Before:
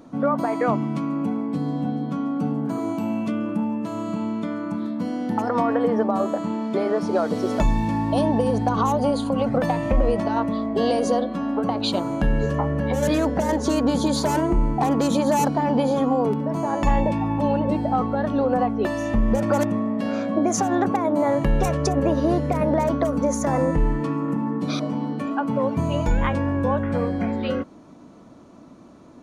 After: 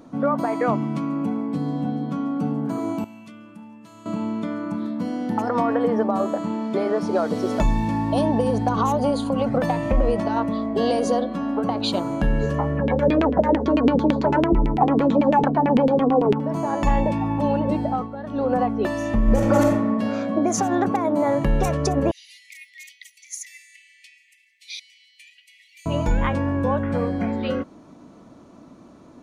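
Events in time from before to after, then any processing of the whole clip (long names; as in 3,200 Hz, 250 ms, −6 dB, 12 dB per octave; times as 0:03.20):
0:03.04–0:04.06: guitar amp tone stack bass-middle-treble 5-5-5
0:12.77–0:16.40: auto-filter low-pass saw down 9 Hz 260–3,000 Hz
0:17.85–0:18.50: duck −10 dB, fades 0.25 s
0:19.24–0:19.90: thrown reverb, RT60 0.93 s, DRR 0.5 dB
0:22.11–0:25.86: Chebyshev high-pass filter 1,900 Hz, order 10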